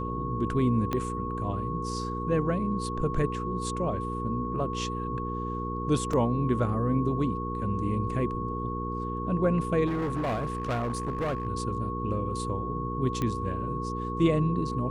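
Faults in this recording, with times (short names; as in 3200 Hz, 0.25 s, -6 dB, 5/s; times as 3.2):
hum 60 Hz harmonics 8 -34 dBFS
tone 1100 Hz -34 dBFS
0.93 pop -16 dBFS
6.13 gap 3.7 ms
9.86–11.47 clipped -25.5 dBFS
13.22 pop -17 dBFS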